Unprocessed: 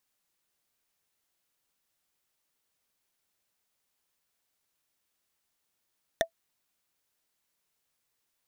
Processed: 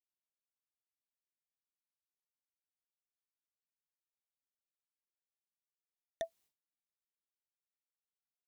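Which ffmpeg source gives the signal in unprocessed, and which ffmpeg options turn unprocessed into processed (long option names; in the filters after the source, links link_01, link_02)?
-f lavfi -i "aevalsrc='0.141*pow(10,-3*t/0.09)*sin(2*PI*662*t)+0.119*pow(10,-3*t/0.027)*sin(2*PI*1825.1*t)+0.1*pow(10,-3*t/0.012)*sin(2*PI*3577.4*t)+0.0841*pow(10,-3*t/0.007)*sin(2*PI*5913.6*t)+0.0708*pow(10,-3*t/0.004)*sin(2*PI*8831.1*t)':duration=0.45:sample_rate=44100"
-af "agate=range=-33dB:threshold=-57dB:ratio=3:detection=peak,equalizer=frequency=1500:width=1.5:gain=-6,areverse,acompressor=threshold=-37dB:ratio=6,areverse"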